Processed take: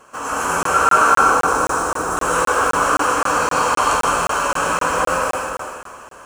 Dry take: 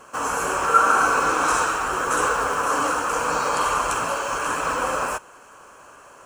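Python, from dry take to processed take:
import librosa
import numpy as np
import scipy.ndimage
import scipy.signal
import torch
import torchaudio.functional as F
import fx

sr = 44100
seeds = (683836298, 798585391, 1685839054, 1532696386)

y = fx.peak_eq(x, sr, hz=2800.0, db=-12.5, octaves=1.8, at=(1.1, 2.17))
y = y + 10.0 ** (-9.5 / 20.0) * np.pad(y, (int(322 * sr / 1000.0), 0))[:len(y)]
y = fx.rev_plate(y, sr, seeds[0], rt60_s=1.9, hf_ratio=0.9, predelay_ms=100, drr_db=-5.5)
y = fx.buffer_crackle(y, sr, first_s=0.63, period_s=0.26, block=1024, kind='zero')
y = F.gain(torch.from_numpy(y), -1.5).numpy()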